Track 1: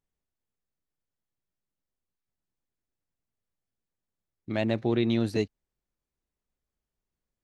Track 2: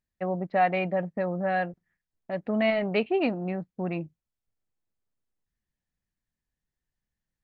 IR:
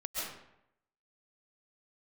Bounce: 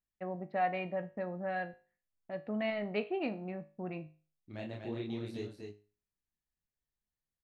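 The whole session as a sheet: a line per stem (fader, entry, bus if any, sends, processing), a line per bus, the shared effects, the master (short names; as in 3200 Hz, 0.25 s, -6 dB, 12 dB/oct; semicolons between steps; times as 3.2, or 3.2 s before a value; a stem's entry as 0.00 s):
-7.5 dB, 0.00 s, no send, echo send -5 dB, chorus voices 2, 1.1 Hz, delay 29 ms, depth 3.9 ms
-5.0 dB, 0.00 s, no send, no echo send, dry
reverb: off
echo: echo 0.243 s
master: resonator 52 Hz, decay 0.37 s, harmonics all, mix 60%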